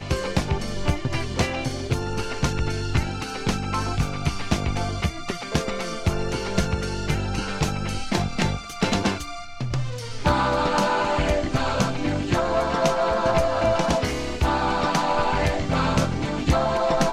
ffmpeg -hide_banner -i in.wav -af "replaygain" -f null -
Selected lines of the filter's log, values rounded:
track_gain = +5.5 dB
track_peak = 0.300